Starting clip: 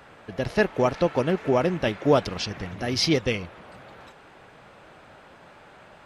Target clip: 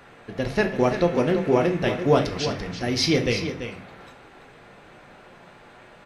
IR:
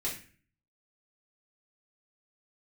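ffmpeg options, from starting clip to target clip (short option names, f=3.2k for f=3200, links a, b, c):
-filter_complex "[0:a]aecho=1:1:338:0.335,asplit=2[a][b];[1:a]atrim=start_sample=2205[c];[b][c]afir=irnorm=-1:irlink=0,volume=-5dB[d];[a][d]amix=inputs=2:normalize=0,volume=-2.5dB"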